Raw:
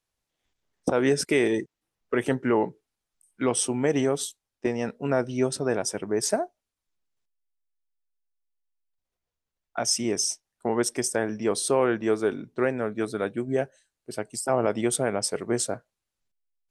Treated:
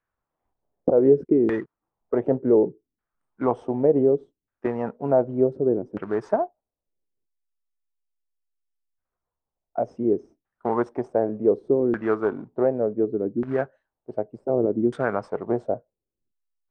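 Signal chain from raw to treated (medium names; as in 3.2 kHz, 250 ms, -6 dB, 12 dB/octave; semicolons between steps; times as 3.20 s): short-mantissa float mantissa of 2-bit; LFO low-pass saw down 0.67 Hz 280–1600 Hz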